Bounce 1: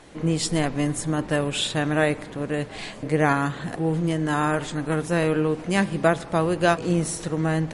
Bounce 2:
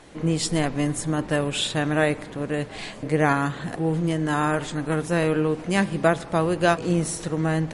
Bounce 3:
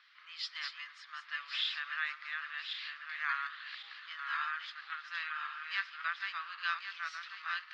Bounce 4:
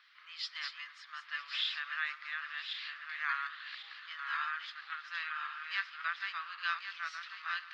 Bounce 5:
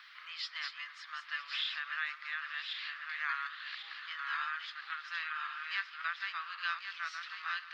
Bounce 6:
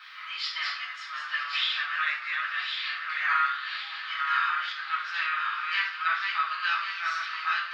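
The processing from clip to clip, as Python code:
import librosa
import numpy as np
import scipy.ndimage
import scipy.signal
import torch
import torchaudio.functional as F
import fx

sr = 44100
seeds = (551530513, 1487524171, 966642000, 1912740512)

y1 = x
y2 = fx.reverse_delay_fb(y1, sr, ms=547, feedback_pct=55, wet_db=-4)
y2 = scipy.signal.sosfilt(scipy.signal.cheby1(4, 1.0, [1200.0, 5000.0], 'bandpass', fs=sr, output='sos'), y2)
y2 = F.gain(torch.from_numpy(y2), -8.0).numpy()
y3 = y2 + 10.0 ** (-21.0 / 20.0) * np.pad(y2, (int(958 * sr / 1000.0), 0))[:len(y2)]
y4 = fx.band_squash(y3, sr, depth_pct=40)
y5 = fx.room_shoebox(y4, sr, seeds[0], volume_m3=630.0, walls='furnished', distance_m=7.8)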